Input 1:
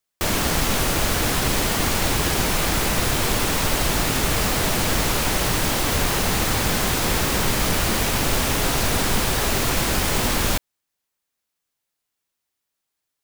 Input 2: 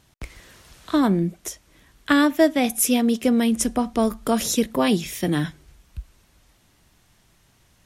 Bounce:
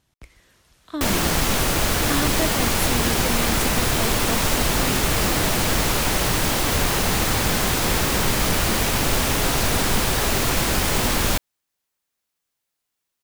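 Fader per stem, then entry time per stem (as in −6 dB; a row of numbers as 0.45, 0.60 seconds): +0.5, −9.5 decibels; 0.80, 0.00 seconds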